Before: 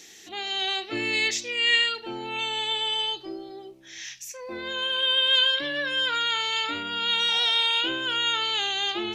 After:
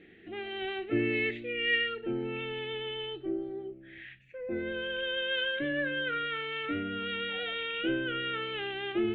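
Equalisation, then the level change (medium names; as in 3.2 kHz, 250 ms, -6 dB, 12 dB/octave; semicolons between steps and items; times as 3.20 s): distance through air 490 m; tape spacing loss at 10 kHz 30 dB; static phaser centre 2.3 kHz, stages 4; +7.0 dB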